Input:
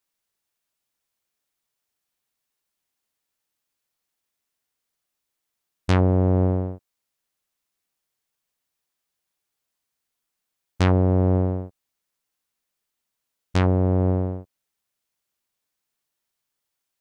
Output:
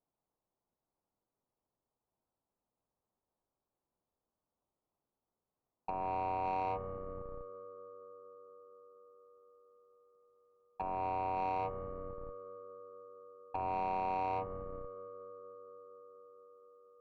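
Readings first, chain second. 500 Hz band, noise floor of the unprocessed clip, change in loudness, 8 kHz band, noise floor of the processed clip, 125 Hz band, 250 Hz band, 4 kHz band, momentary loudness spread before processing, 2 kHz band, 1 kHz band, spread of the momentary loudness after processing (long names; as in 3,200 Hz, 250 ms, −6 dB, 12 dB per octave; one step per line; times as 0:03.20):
−13.0 dB, −82 dBFS, −17.5 dB, can't be measured, below −85 dBFS, −29.0 dB, −24.5 dB, below −20 dB, 13 LU, −13.5 dB, 0.0 dB, 20 LU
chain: on a send: feedback echo with a band-pass in the loop 235 ms, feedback 83%, band-pass 390 Hz, level −22 dB
on the sum: compressor whose output falls as the input rises −24 dBFS, ratio −0.5
ring modulation 850 Hz
in parallel at −10 dB: comparator with hysteresis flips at −35.5 dBFS
on the sum: inverse Chebyshev low-pass filter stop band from 2,600 Hz, stop band 50 dB
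brickwall limiter −24 dBFS, peak gain reduction 9.5 dB
soft clipping −30.5 dBFS, distortion −14 dB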